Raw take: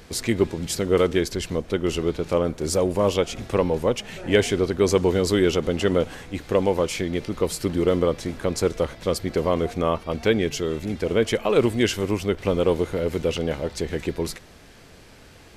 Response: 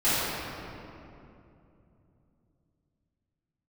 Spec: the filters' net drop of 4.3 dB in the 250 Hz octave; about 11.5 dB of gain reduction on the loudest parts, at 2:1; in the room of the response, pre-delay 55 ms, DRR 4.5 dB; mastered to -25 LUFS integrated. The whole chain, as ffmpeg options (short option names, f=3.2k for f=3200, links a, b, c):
-filter_complex "[0:a]equalizer=f=250:t=o:g=-6.5,acompressor=threshold=-37dB:ratio=2,asplit=2[a][b];[1:a]atrim=start_sample=2205,adelay=55[c];[b][c]afir=irnorm=-1:irlink=0,volume=-21dB[d];[a][d]amix=inputs=2:normalize=0,volume=8dB"